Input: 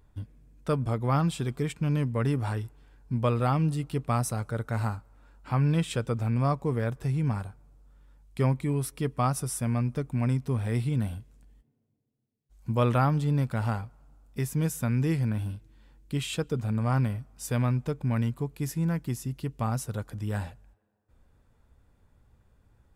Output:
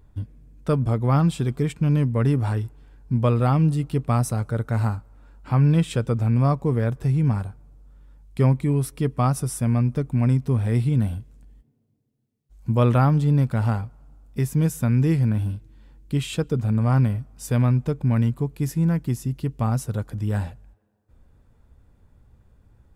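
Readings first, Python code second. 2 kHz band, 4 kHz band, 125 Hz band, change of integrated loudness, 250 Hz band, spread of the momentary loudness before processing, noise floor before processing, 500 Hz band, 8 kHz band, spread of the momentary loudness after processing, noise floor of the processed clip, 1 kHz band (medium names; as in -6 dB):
+2.0 dB, no reading, +7.0 dB, +6.5 dB, +6.5 dB, 10 LU, -70 dBFS, +4.5 dB, +1.5 dB, 9 LU, -64 dBFS, +3.0 dB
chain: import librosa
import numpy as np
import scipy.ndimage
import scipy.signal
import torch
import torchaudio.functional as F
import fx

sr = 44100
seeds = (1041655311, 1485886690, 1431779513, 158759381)

y = fx.low_shelf(x, sr, hz=500.0, db=6.0)
y = y * librosa.db_to_amplitude(1.5)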